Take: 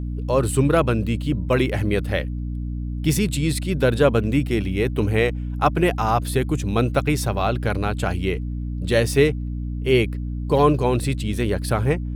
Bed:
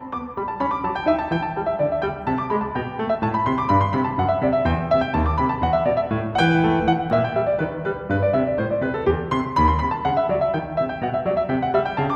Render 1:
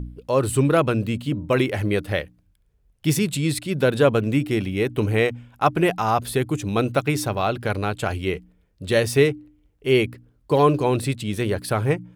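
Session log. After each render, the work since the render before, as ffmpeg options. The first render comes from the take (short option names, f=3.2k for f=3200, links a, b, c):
-af "bandreject=f=60:t=h:w=4,bandreject=f=120:t=h:w=4,bandreject=f=180:t=h:w=4,bandreject=f=240:t=h:w=4,bandreject=f=300:t=h:w=4"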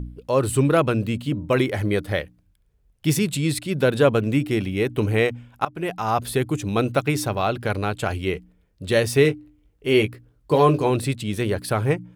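-filter_complex "[0:a]asettb=1/sr,asplit=3[a][b][c];[a]atrim=end=1.594[d];[b]atrim=start=1.59:end=2.2,asetpts=PTS-STARTPTS,afade=t=in:d=0.004:c=qsin,afade=t=out:st=0.606:d=0.004:c=qsin,bandreject=f=2.7k:w=8.6[e];[c]atrim=start=2.196[f];[d][e]acrossfade=d=0.004:c1=hsin:c2=qsin[g];[g][f]acrossfade=d=0.004:c1=qsin:c2=hsin,asettb=1/sr,asplit=3[h][i][j];[h]atrim=end=9.234[k];[i]atrim=start=9.23:end=10.9,asetpts=PTS-STARTPTS,afade=t=in:d=0.004:c=qsin,afade=t=out:st=1.666:d=0.004:c=qsin,asplit=2[l][m];[m]adelay=19,volume=-7dB[n];[l][n]amix=inputs=2:normalize=0,atrim=end_sample=73647[o];[j]atrim=start=10.896[p];[k][o]acrossfade=d=0.004:c1=hsin:c2=qsin[q];[q][p]acrossfade=d=0.004:c1=qsin:c2=hsin,asplit=2[r][s];[r]atrim=end=5.65,asetpts=PTS-STARTPTS,afade=t=out:st=5.646:d=0.004:c=hsin:silence=0.0944061[t];[s]atrim=start=5.65,asetpts=PTS-STARTPTS,afade=t=in:d=0.57:silence=0.0944061[u];[t][u]concat=n=2:v=0:a=1"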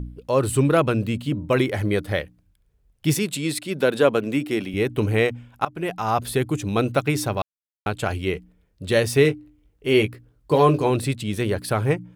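-filter_complex "[0:a]asettb=1/sr,asplit=3[a][b][c];[a]atrim=end=3.144[d];[b]atrim=start=3.14:end=4.74,asetpts=PTS-STARTPTS,afade=t=in:d=0.004:c=qsin,afade=t=out:st=1.596:d=0.004:c=qsin,highpass=220[e];[c]atrim=start=4.736[f];[d][e]acrossfade=d=0.004:c1=hsin:c2=qsin[g];[g][f]acrossfade=d=0.004:c1=qsin:c2=hsin,asplit=3[h][i][j];[h]atrim=end=7.42,asetpts=PTS-STARTPTS,afade=t=out:st=7.416:d=0.004:c=hsin[k];[i]atrim=start=7.42:end=7.86,asetpts=PTS-STARTPTS,volume=0[l];[j]atrim=start=7.86,asetpts=PTS-STARTPTS,afade=t=in:d=0.004:c=hsin[m];[k][l][m]concat=n=3:v=0:a=1"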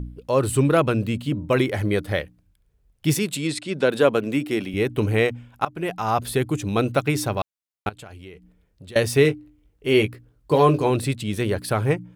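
-filter_complex "[0:a]asplit=3[a][b][c];[a]afade=t=out:st=3.47:d=0.02[d];[b]lowpass=f=8.7k:w=0.5412,lowpass=f=8.7k:w=1.3066,afade=t=in:st=3.47:d=0.02,afade=t=out:st=3.88:d=0.02[e];[c]afade=t=in:st=3.88:d=0.02[f];[d][e][f]amix=inputs=3:normalize=0,asettb=1/sr,asplit=3[g][h][i];[g]atrim=end=7.894[j];[h]atrim=start=7.89:end=8.96,asetpts=PTS-STARTPTS,afade=t=in:d=0.004:c=qsin,afade=t=out:st=1.066:d=0.004:c=qsin,acompressor=threshold=-41dB:ratio=4:attack=3.2:release=140:knee=1:detection=peak[k];[i]atrim=start=8.956[l];[j][k]acrossfade=d=0.004:c1=hsin:c2=qsin[m];[m][l]acrossfade=d=0.004:c1=qsin:c2=hsin"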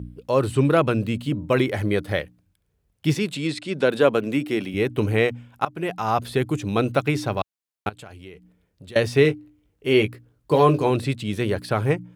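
-filter_complex "[0:a]highpass=76,acrossover=split=5400[a][b];[b]acompressor=threshold=-44dB:ratio=4:attack=1:release=60[c];[a][c]amix=inputs=2:normalize=0"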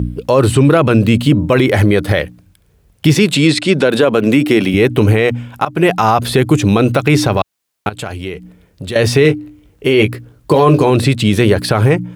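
-filter_complex "[0:a]asplit=2[a][b];[b]acompressor=threshold=-26dB:ratio=6,volume=-3dB[c];[a][c]amix=inputs=2:normalize=0,alimiter=level_in=13dB:limit=-1dB:release=50:level=0:latency=1"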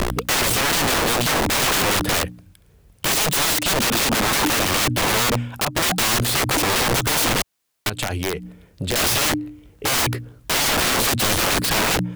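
-af "aeval=exprs='(mod(5.31*val(0)+1,2)-1)/5.31':c=same"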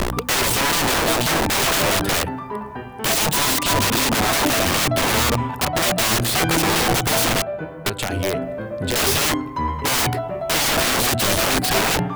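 -filter_complex "[1:a]volume=-6.5dB[a];[0:a][a]amix=inputs=2:normalize=0"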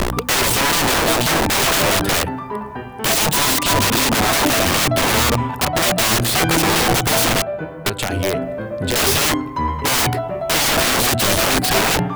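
-af "volume=2.5dB"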